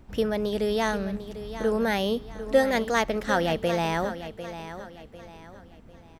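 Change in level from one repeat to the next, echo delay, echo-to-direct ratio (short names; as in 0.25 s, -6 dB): -8.5 dB, 0.748 s, -11.5 dB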